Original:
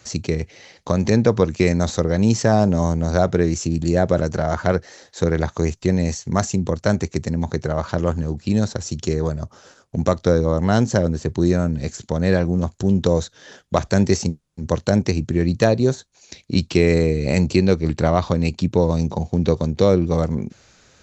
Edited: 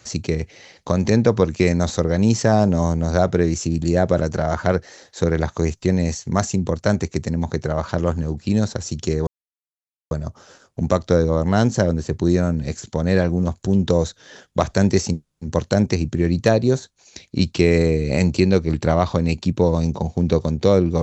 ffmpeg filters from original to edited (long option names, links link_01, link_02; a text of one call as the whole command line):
ffmpeg -i in.wav -filter_complex "[0:a]asplit=2[link_01][link_02];[link_01]atrim=end=9.27,asetpts=PTS-STARTPTS,afade=type=out:start_time=9.266:duration=0.004:curve=hsin,apad=pad_dur=0.84[link_03];[link_02]atrim=start=9.27,asetpts=PTS-STARTPTS,afade=type=in:duration=0.004:curve=hsin[link_04];[link_03][link_04]concat=n=2:v=0:a=1" out.wav